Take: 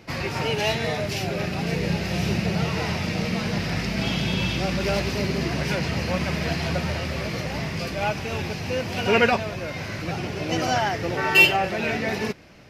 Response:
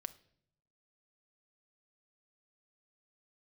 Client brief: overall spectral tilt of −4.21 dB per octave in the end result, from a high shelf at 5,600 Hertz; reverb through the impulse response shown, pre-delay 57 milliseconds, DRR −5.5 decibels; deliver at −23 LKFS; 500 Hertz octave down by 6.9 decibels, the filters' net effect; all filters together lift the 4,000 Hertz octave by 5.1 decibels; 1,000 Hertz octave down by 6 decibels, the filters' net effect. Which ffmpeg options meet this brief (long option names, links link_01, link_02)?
-filter_complex "[0:a]equalizer=frequency=500:width_type=o:gain=-7.5,equalizer=frequency=1000:width_type=o:gain=-5.5,equalizer=frequency=4000:width_type=o:gain=9,highshelf=frequency=5600:gain=-3.5,asplit=2[link_01][link_02];[1:a]atrim=start_sample=2205,adelay=57[link_03];[link_02][link_03]afir=irnorm=-1:irlink=0,volume=9dB[link_04];[link_01][link_04]amix=inputs=2:normalize=0,volume=-6dB"